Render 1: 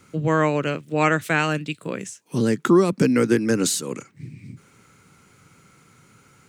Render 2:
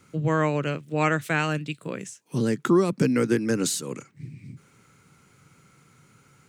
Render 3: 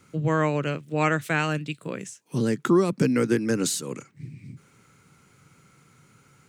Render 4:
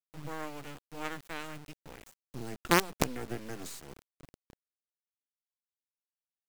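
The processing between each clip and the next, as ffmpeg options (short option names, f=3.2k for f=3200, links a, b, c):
-af "equalizer=f=140:t=o:w=0.33:g=4.5,volume=-4dB"
-af anull
-af "acrusher=bits=3:dc=4:mix=0:aa=0.000001,aeval=exprs='0.596*(cos(1*acos(clip(val(0)/0.596,-1,1)))-cos(1*PI/2))+0.168*(cos(3*acos(clip(val(0)/0.596,-1,1)))-cos(3*PI/2))+0.0335*(cos(5*acos(clip(val(0)/0.596,-1,1)))-cos(5*PI/2))':c=same,volume=-6dB"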